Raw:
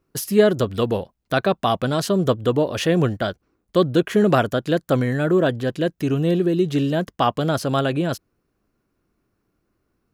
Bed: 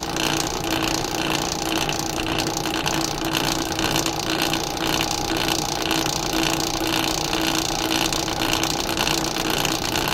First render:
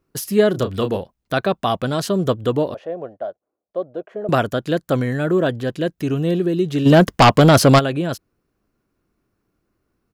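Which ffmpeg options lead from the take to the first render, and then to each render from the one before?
-filter_complex "[0:a]asplit=3[s0][s1][s2];[s0]afade=t=out:st=0.53:d=0.02[s3];[s1]asplit=2[s4][s5];[s5]adelay=31,volume=0.355[s6];[s4][s6]amix=inputs=2:normalize=0,afade=t=in:st=0.53:d=0.02,afade=t=out:st=0.96:d=0.02[s7];[s2]afade=t=in:st=0.96:d=0.02[s8];[s3][s7][s8]amix=inputs=3:normalize=0,asettb=1/sr,asplit=3[s9][s10][s11];[s9]atrim=end=2.744[s12];[s10]atrim=start=2.74:end=4.29,asetpts=PTS-STARTPTS,afade=t=in:d=0.004:c=qsin,afade=t=out:st=1.546:d=0.004:c=qsin,bandpass=f=630:t=q:w=3.7[s13];[s11]atrim=start=4.286[s14];[s12][s13]acrossfade=d=0.004:c1=hsin:c2=qsin[s15];[s15][s14]acrossfade=d=0.004:c1=qsin:c2=hsin,asplit=3[s16][s17][s18];[s16]afade=t=out:st=6.85:d=0.02[s19];[s17]aeval=exprs='0.562*sin(PI/2*2.82*val(0)/0.562)':c=same,afade=t=in:st=6.85:d=0.02,afade=t=out:st=7.78:d=0.02[s20];[s18]afade=t=in:st=7.78:d=0.02[s21];[s19][s20][s21]amix=inputs=3:normalize=0"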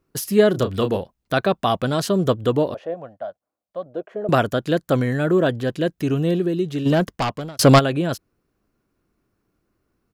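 -filter_complex "[0:a]asettb=1/sr,asplit=3[s0][s1][s2];[s0]atrim=end=2.944[s3];[s1]atrim=start=2.94:end=3.86,asetpts=PTS-STARTPTS,afade=t=in:d=0.004:c=qsin,afade=t=out:st=0.916:d=0.004:c=qsin,equalizer=f=390:w=2.2:g=-15[s4];[s2]atrim=start=3.856[s5];[s3][s4]acrossfade=d=0.004:c1=hsin:c2=qsin[s6];[s6][s5]acrossfade=d=0.004:c1=qsin:c2=hsin,asplit=2[s7][s8];[s7]atrim=end=7.59,asetpts=PTS-STARTPTS,afade=t=out:st=6.17:d=1.42[s9];[s8]atrim=start=7.59,asetpts=PTS-STARTPTS,afade=t=in:d=0.004:c=hsin[s10];[s9][s10]concat=n=2:v=0:a=1"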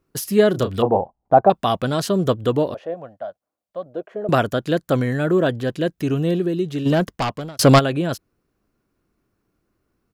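-filter_complex "[0:a]asettb=1/sr,asplit=3[s0][s1][s2];[s0]atrim=end=0.824[s3];[s1]atrim=start=0.82:end=1.5,asetpts=PTS-STARTPTS,afade=t=in:d=0.004:c=qsin,afade=t=out:st=0.676:d=0.004:c=qsin,lowpass=f=800:t=q:w=5.8[s4];[s2]atrim=start=1.496[s5];[s3][s4]acrossfade=d=0.004:c1=hsin:c2=qsin[s6];[s6][s5]acrossfade=d=0.004:c1=qsin:c2=hsin"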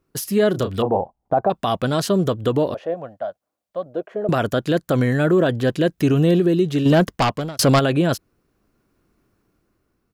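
-af "dynaudnorm=f=320:g=7:m=3.76,alimiter=limit=0.355:level=0:latency=1:release=53"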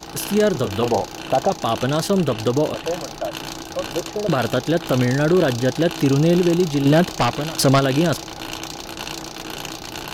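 -filter_complex "[1:a]volume=0.355[s0];[0:a][s0]amix=inputs=2:normalize=0"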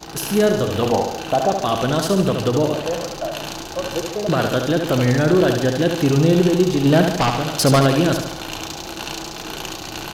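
-af "aecho=1:1:73|146|219|292|365|438|511:0.501|0.271|0.146|0.0789|0.0426|0.023|0.0124"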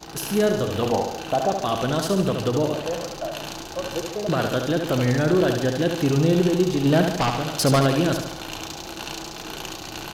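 -af "volume=0.631"

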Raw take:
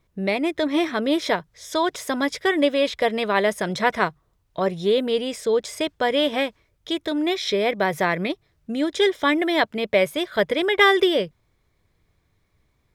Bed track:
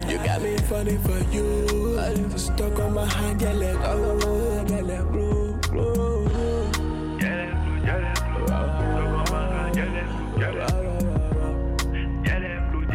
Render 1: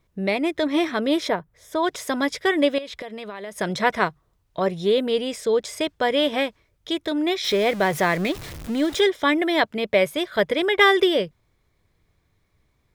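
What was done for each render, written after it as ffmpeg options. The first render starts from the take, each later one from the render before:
-filter_complex "[0:a]asplit=3[s0][s1][s2];[s0]afade=t=out:st=1.27:d=0.02[s3];[s1]equalizer=f=5000:t=o:w=2.1:g=-13.5,afade=t=in:st=1.27:d=0.02,afade=t=out:st=1.82:d=0.02[s4];[s2]afade=t=in:st=1.82:d=0.02[s5];[s3][s4][s5]amix=inputs=3:normalize=0,asettb=1/sr,asplit=3[s6][s7][s8];[s6]atrim=end=2.784[s9];[s7]atrim=start=2.78:end=3.59,asetpts=PTS-STARTPTS,afade=t=in:d=0.004:c=qsin,afade=t=out:st=0.806:d=0.004:c=qsin,acompressor=threshold=0.0316:ratio=16:attack=3.2:release=140:knee=1:detection=peak[s10];[s8]atrim=start=3.586[s11];[s9][s10]acrossfade=d=0.004:c1=hsin:c2=qsin[s12];[s12][s11]acrossfade=d=0.004:c1=qsin:c2=hsin,asettb=1/sr,asplit=3[s13][s14][s15];[s13]atrim=end=7.444[s16];[s14]atrim=start=7.44:end=9.01,asetpts=PTS-STARTPTS,afade=t=in:d=0.004:c=qsin,afade=t=out:st=1.566:d=0.004:c=qsin,aeval=exprs='val(0)+0.5*0.0299*sgn(val(0))':c=same[s17];[s15]atrim=start=9.006[s18];[s16][s17]acrossfade=d=0.004:c1=hsin:c2=qsin[s19];[s19][s18]acrossfade=d=0.004:c1=qsin:c2=hsin"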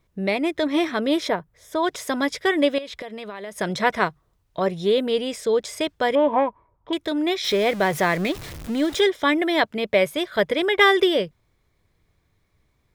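-filter_complex "[0:a]asettb=1/sr,asplit=3[s0][s1][s2];[s0]atrim=end=6.154[s3];[s1]atrim=start=6.15:end=6.93,asetpts=PTS-STARTPTS,afade=t=in:d=0.004:c=qsin,afade=t=out:st=0.776:d=0.004:c=qsin,lowpass=f=990:t=q:w=8.9[s4];[s2]atrim=start=6.926[s5];[s3][s4]acrossfade=d=0.004:c1=hsin:c2=qsin[s6];[s6][s5]acrossfade=d=0.004:c1=qsin:c2=hsin"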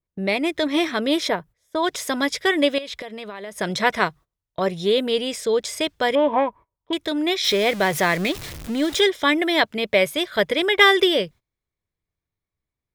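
-af "agate=range=0.1:threshold=0.00891:ratio=16:detection=peak,adynamicequalizer=threshold=0.02:dfrequency=1900:dqfactor=0.7:tfrequency=1900:tqfactor=0.7:attack=5:release=100:ratio=0.375:range=2.5:mode=boostabove:tftype=highshelf"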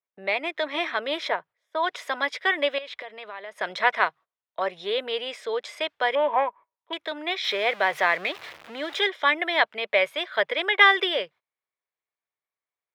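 -filter_complex "[0:a]highpass=120,acrossover=split=530 3500:gain=0.0708 1 0.1[s0][s1][s2];[s0][s1][s2]amix=inputs=3:normalize=0"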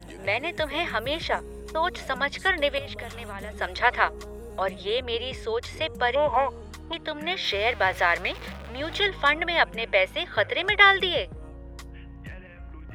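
-filter_complex "[1:a]volume=0.141[s0];[0:a][s0]amix=inputs=2:normalize=0"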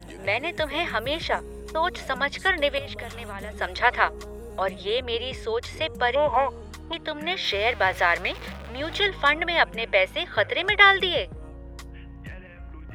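-af "volume=1.12"

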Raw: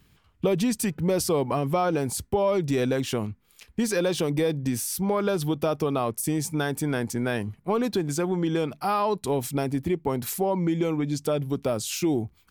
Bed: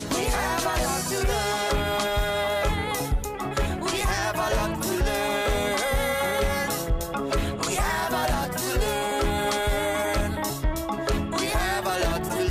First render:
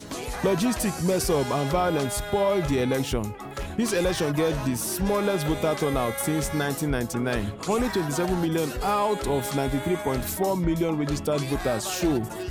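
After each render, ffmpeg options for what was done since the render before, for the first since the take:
-filter_complex "[1:a]volume=0.398[s0];[0:a][s0]amix=inputs=2:normalize=0"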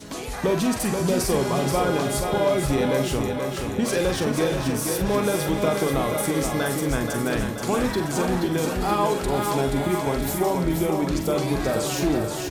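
-filter_complex "[0:a]asplit=2[s0][s1];[s1]adelay=44,volume=0.398[s2];[s0][s2]amix=inputs=2:normalize=0,aecho=1:1:479|958|1437|1916|2395|2874|3353:0.531|0.292|0.161|0.0883|0.0486|0.0267|0.0147"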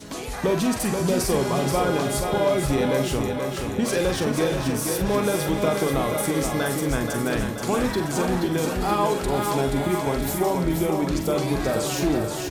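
-af anull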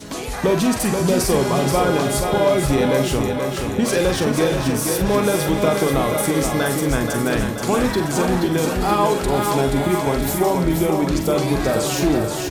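-af "volume=1.68"

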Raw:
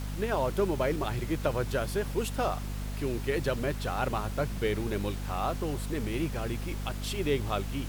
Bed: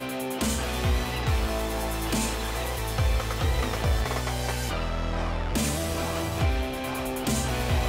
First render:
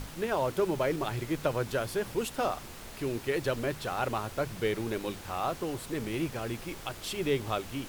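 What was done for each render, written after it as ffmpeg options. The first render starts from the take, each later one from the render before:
-af "bandreject=f=50:t=h:w=6,bandreject=f=100:t=h:w=6,bandreject=f=150:t=h:w=6,bandreject=f=200:t=h:w=6,bandreject=f=250:t=h:w=6"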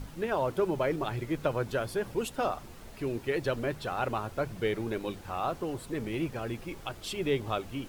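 -af "afftdn=nr=8:nf=-45"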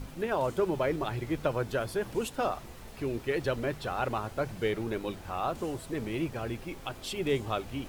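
-filter_complex "[1:a]volume=0.0631[s0];[0:a][s0]amix=inputs=2:normalize=0"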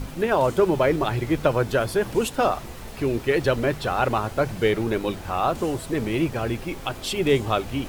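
-af "volume=2.82"

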